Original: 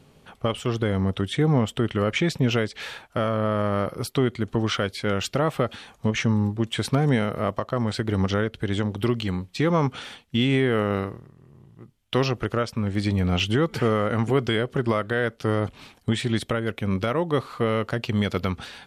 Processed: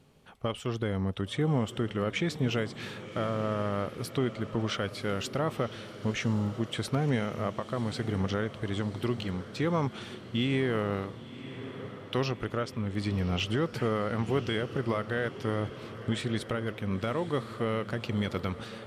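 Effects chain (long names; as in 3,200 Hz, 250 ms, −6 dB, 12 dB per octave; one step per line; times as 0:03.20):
feedback delay with all-pass diffusion 1,056 ms, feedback 56%, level −13 dB
level −7 dB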